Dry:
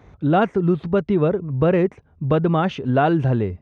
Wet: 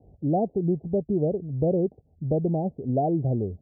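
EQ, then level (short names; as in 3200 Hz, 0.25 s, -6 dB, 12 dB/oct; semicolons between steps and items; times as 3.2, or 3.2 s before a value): steep low-pass 770 Hz 72 dB/oct; -6.0 dB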